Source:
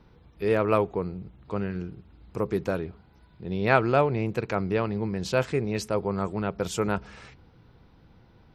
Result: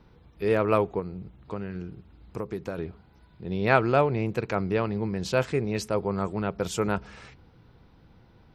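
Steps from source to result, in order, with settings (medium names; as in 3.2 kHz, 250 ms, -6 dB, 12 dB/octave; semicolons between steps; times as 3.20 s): 0.99–2.78 s: compression 4:1, threshold -30 dBFS, peak gain reduction 8 dB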